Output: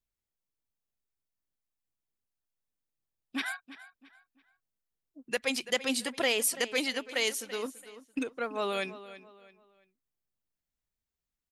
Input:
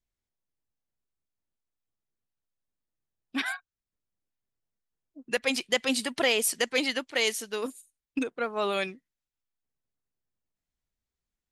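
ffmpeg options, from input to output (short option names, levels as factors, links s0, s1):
-filter_complex "[0:a]highshelf=f=11000:g=6,asplit=2[s0][s1];[s1]adelay=335,lowpass=f=5000:p=1,volume=0.178,asplit=2[s2][s3];[s3]adelay=335,lowpass=f=5000:p=1,volume=0.35,asplit=2[s4][s5];[s5]adelay=335,lowpass=f=5000:p=1,volume=0.35[s6];[s2][s4][s6]amix=inputs=3:normalize=0[s7];[s0][s7]amix=inputs=2:normalize=0,volume=0.668"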